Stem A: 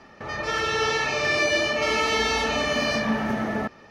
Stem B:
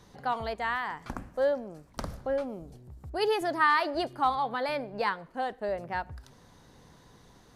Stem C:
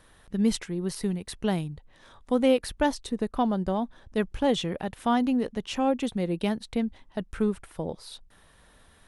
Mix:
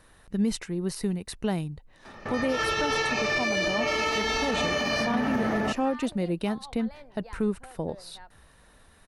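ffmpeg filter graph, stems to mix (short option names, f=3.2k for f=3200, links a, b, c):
-filter_complex "[0:a]adelay=2050,volume=2.5dB[a];[1:a]adelay=2250,volume=-17.5dB[b];[2:a]bandreject=f=3.3k:w=9.9,volume=0.5dB[c];[a][b][c]amix=inputs=3:normalize=0,alimiter=limit=-17.5dB:level=0:latency=1:release=99"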